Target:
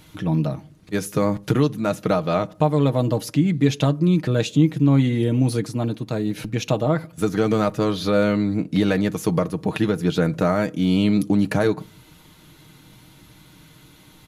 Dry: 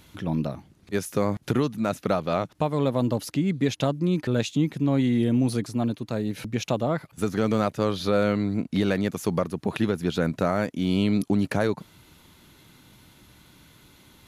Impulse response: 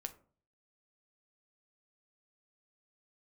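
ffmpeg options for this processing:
-filter_complex "[0:a]aecho=1:1:6.4:0.45,asplit=2[a][b];[1:a]atrim=start_sample=2205,lowshelf=f=340:g=7[c];[b][c]afir=irnorm=-1:irlink=0,volume=-6dB[d];[a][d]amix=inputs=2:normalize=0"

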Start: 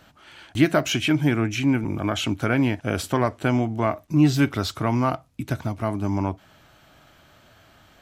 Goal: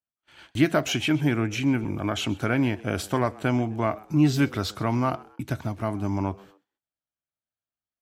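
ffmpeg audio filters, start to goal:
-filter_complex "[0:a]agate=range=-45dB:threshold=-46dB:ratio=16:detection=peak,asplit=3[a][b][c];[b]adelay=129,afreqshift=100,volume=-22.5dB[d];[c]adelay=258,afreqshift=200,volume=-31.6dB[e];[a][d][e]amix=inputs=3:normalize=0,volume=-2.5dB"

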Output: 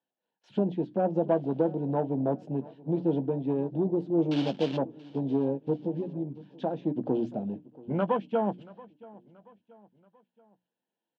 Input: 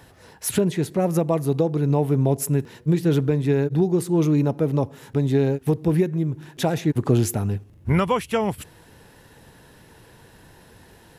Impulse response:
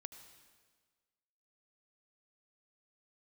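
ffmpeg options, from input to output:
-filter_complex "[0:a]asettb=1/sr,asplit=3[a][b][c];[a]atrim=end=1.284[d];[b]atrim=start=1.28:end=1.72,asetpts=PTS-STARTPTS,afade=t=in:d=0.004:c=qsin,afade=t=out:st=0.436:d=0.004:c=qsin,aeval=exprs='val(0)+0.5*0.0251*sgn(val(0))':c=same[e];[c]atrim=start=1.716[f];[d][e]acrossfade=d=0.004:c1=hsin:c2=qsin[g];[g][f]acrossfade=d=0.004:c1=qsin:c2=hsin,afwtdn=0.0562,agate=range=-18dB:threshold=-57dB:ratio=16:detection=peak,highshelf=f=3k:g=-11,bandreject=f=60:t=h:w=6,bandreject=f=120:t=h:w=6,bandreject=f=180:t=h:w=6,bandreject=f=240:t=h:w=6,bandreject=f=300:t=h:w=6,asettb=1/sr,asplit=3[h][i][j];[h]atrim=end=4.314[k];[i]atrim=start=4.31:end=4.77,asetpts=PTS-STARTPTS,afade=t=in:d=0.004:c=qsin,afade=t=out:st=0.456:d=0.004:c=qsin,acrusher=bits=3:mode=log:mix=0:aa=0.000001[l];[j]atrim=start=4.766[m];[k][l]acrossfade=d=0.004:c1=hsin:c2=qsin[n];[n][m]acrossfade=d=0.004:c1=qsin:c2=hsin,asettb=1/sr,asplit=3[o][p][q];[o]atrim=end=5.804[r];[p]atrim=start=5.8:end=6.85,asetpts=PTS-STARTPTS,afade=t=in:d=0.004:c=qsin,afade=t=out:st=1.046:d=0.004:c=qsin,acompressor=threshold=-22dB:ratio=6[s];[q]atrim=start=6.846[t];[r][s]acrossfade=d=0.004:c1=hsin:c2=qsin[u];[u][t]acrossfade=d=0.004:c1=qsin:c2=hsin,asoftclip=type=tanh:threshold=-10.5dB,highpass=f=210:w=0.5412,highpass=f=210:w=1.3066,equalizer=f=280:t=q:w=4:g=-3,equalizer=f=410:t=q:w=4:g=-8,equalizer=f=1.2k:t=q:w=4:g=-10,equalizer=f=2k:t=q:w=4:g=-9,equalizer=f=3.1k:t=q:w=4:g=7,lowpass=f=4.4k:w=0.5412,lowpass=f=4.4k:w=1.3066,asplit=2[v][w];[w]adelay=15,volume=-13.5dB[x];[v][x]amix=inputs=2:normalize=0,aecho=1:1:680|1360|2040:0.0841|0.0379|0.017"

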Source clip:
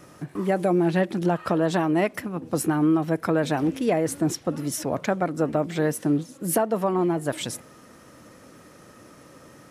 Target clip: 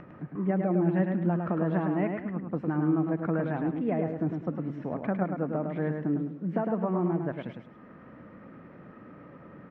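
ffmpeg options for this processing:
-af "lowpass=f=2.2k:w=0.5412,lowpass=f=2.2k:w=1.3066,equalizer=f=190:t=o:w=0.82:g=8,acompressor=mode=upward:threshold=-32dB:ratio=2.5,aecho=1:1:105|210|315|420:0.562|0.18|0.0576|0.0184,volume=-9dB"

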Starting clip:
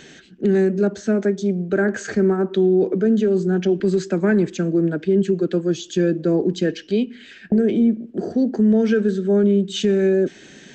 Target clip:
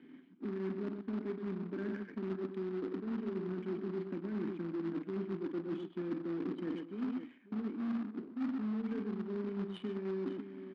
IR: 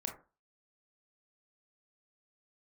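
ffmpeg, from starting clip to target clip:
-filter_complex "[0:a]asplit=3[a][b][c];[a]bandpass=f=270:t=q:w=8,volume=0dB[d];[b]bandpass=f=2.29k:t=q:w=8,volume=-6dB[e];[c]bandpass=f=3.01k:t=q:w=8,volume=-9dB[f];[d][e][f]amix=inputs=3:normalize=0,aecho=1:1:47|125|545:0.316|0.355|0.158,aresample=11025,acrusher=bits=3:mode=log:mix=0:aa=0.000001,aresample=44100,equalizer=f=1.2k:w=1.4:g=6.5,areverse,acompressor=threshold=-34dB:ratio=8,areverse,highpass=100,adynamicsmooth=sensitivity=3.5:basefreq=1.1k"

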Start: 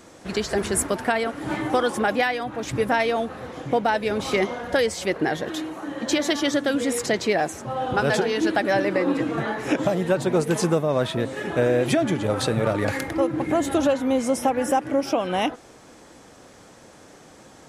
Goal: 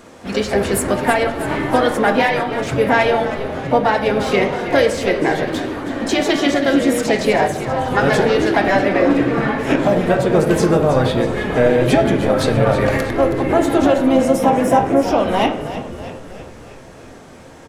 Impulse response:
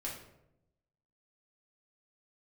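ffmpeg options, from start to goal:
-filter_complex "[0:a]asplit=2[a][b];[b]asetrate=55563,aresample=44100,atempo=0.793701,volume=-8dB[c];[a][c]amix=inputs=2:normalize=0,asplit=8[d][e][f][g][h][i][j][k];[e]adelay=321,afreqshift=-64,volume=-12dB[l];[f]adelay=642,afreqshift=-128,volume=-16.4dB[m];[g]adelay=963,afreqshift=-192,volume=-20.9dB[n];[h]adelay=1284,afreqshift=-256,volume=-25.3dB[o];[i]adelay=1605,afreqshift=-320,volume=-29.7dB[p];[j]adelay=1926,afreqshift=-384,volume=-34.2dB[q];[k]adelay=2247,afreqshift=-448,volume=-38.6dB[r];[d][l][m][n][o][p][q][r]amix=inputs=8:normalize=0,asplit=2[s][t];[1:a]atrim=start_sample=2205,lowpass=4.4k[u];[t][u]afir=irnorm=-1:irlink=0,volume=0dB[v];[s][v]amix=inputs=2:normalize=0,volume=1dB"

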